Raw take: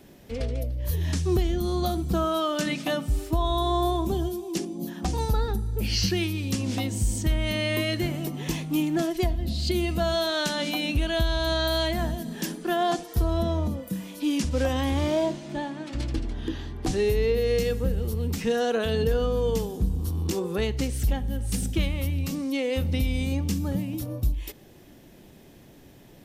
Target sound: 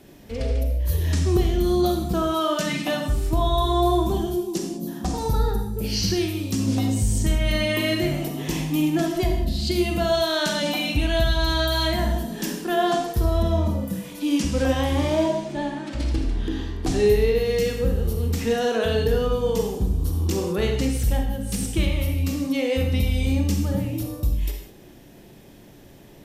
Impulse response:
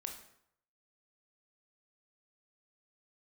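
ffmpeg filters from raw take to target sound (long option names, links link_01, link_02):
-filter_complex "[0:a]asettb=1/sr,asplit=3[link_01][link_02][link_03];[link_01]atrim=end=4.404[link_04];[link_02]atrim=start=4.4:end=6.98,asetpts=PTS-STARTPTS,afade=type=in:duration=0.004:curve=qsin,afade=type=out:start_time=2.576:duration=0.004:curve=qsin,equalizer=frequency=2400:width_type=o:width=1.2:gain=-6[link_05];[link_03]atrim=start=6.976[link_06];[link_04][link_05]acrossfade=duration=0.004:curve1=hsin:curve2=qsin[link_07];[link_07][link_06]acrossfade=duration=0.004:curve1=qsin:curve2=hsin[link_08];[1:a]atrim=start_sample=2205,atrim=end_sample=6174,asetrate=29106,aresample=44100[link_09];[link_08][link_09]afir=irnorm=-1:irlink=0,volume=3.5dB"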